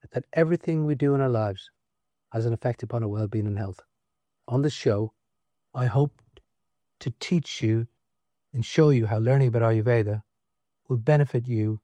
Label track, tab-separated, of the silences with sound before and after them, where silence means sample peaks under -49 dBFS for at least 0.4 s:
1.680000	2.320000	silence
3.820000	4.480000	silence
5.090000	5.740000	silence
6.380000	7.010000	silence
7.860000	8.540000	silence
10.210000	10.900000	silence